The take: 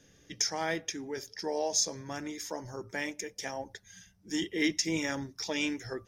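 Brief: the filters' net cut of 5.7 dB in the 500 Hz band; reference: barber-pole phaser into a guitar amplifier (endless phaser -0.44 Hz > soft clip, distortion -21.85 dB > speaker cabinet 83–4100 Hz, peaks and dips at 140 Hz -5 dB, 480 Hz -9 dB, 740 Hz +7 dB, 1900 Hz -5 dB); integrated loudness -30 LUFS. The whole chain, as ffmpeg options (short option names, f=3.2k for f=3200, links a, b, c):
-filter_complex "[0:a]equalizer=f=500:t=o:g=-5.5,asplit=2[a][b];[b]afreqshift=-0.44[c];[a][c]amix=inputs=2:normalize=1,asoftclip=threshold=-22dB,highpass=83,equalizer=f=140:t=q:w=4:g=-5,equalizer=f=480:t=q:w=4:g=-9,equalizer=f=740:t=q:w=4:g=7,equalizer=f=1.9k:t=q:w=4:g=-5,lowpass=f=4.1k:w=0.5412,lowpass=f=4.1k:w=1.3066,volume=10.5dB"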